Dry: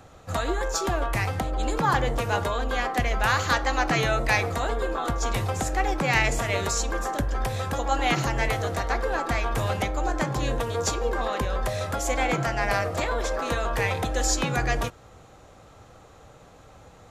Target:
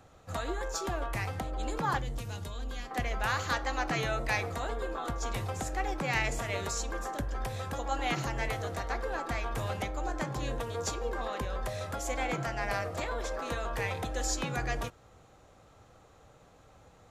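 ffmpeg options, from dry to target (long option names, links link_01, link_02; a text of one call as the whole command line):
ffmpeg -i in.wav -filter_complex "[0:a]asettb=1/sr,asplit=3[link_01][link_02][link_03];[link_01]atrim=end=1.984[link_04];[link_02]atrim=start=1.98:end=2.91,asetpts=PTS-STARTPTS,afade=type=in:duration=0.004:curve=qsin,afade=type=out:start_time=0.926:duration=0.004:curve=qsin,acrossover=split=260|3000[link_05][link_06][link_07];[link_06]acompressor=threshold=-39dB:ratio=6[link_08];[link_05][link_08][link_07]amix=inputs=3:normalize=0[link_09];[link_03]atrim=start=2.906[link_10];[link_04][link_09]acrossfade=duration=0.004:curve1=hsin:curve2=qsin[link_11];[link_11][link_10]acrossfade=duration=0.004:curve1=qsin:curve2=hsin,volume=-8dB" out.wav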